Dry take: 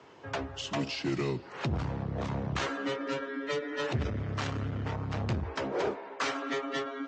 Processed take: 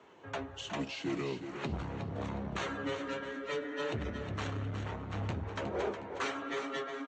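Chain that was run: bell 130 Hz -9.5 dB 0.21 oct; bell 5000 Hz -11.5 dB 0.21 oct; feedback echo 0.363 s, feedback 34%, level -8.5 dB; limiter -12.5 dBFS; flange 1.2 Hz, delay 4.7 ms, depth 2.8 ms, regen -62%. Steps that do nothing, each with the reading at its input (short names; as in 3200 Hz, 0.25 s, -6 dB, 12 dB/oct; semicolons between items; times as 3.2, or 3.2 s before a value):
limiter -12.5 dBFS: input peak -19.5 dBFS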